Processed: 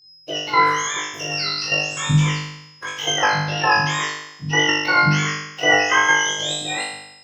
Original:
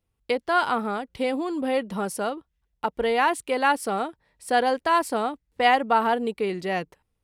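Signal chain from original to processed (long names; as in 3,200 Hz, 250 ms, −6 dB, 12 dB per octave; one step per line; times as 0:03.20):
frequency axis turned over on the octave scale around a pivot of 1,200 Hz
output level in coarse steps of 12 dB
steady tone 5,100 Hz −58 dBFS
harmonic and percussive parts rebalanced harmonic −3 dB
flutter between parallel walls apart 3.4 metres, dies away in 0.85 s
level +7.5 dB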